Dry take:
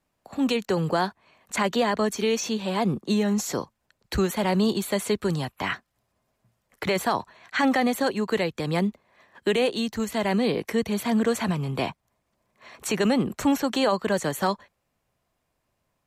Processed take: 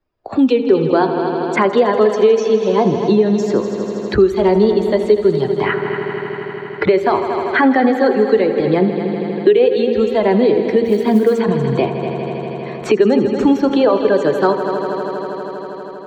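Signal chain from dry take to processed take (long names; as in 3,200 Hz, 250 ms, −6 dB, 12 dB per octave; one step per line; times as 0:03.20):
spectral dynamics exaggerated over time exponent 1.5
graphic EQ with 15 bands 160 Hz −5 dB, 400 Hz +11 dB, 2,500 Hz −3 dB
in parallel at −1 dB: brickwall limiter −17 dBFS, peak gain reduction 10.5 dB
on the sum: high-frequency loss of the air 210 metres
hum removal 57.58 Hz, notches 27
on a send: echo machine with several playback heads 80 ms, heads all three, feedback 65%, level −15 dB
0:10.85–0:11.39: on the sum: log-companded quantiser 8 bits
multiband upward and downward compressor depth 70%
level +5.5 dB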